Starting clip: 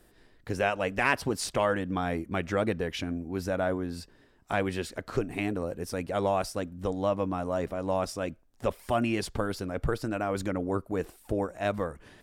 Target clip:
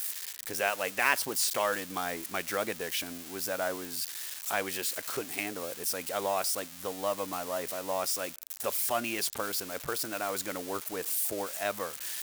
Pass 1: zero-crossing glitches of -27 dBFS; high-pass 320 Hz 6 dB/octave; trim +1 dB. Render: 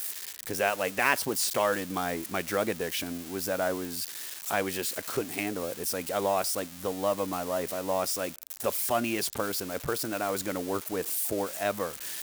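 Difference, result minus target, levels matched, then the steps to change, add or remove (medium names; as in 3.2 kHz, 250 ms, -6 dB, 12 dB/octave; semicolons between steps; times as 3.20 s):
250 Hz band +5.0 dB
change: high-pass 880 Hz 6 dB/octave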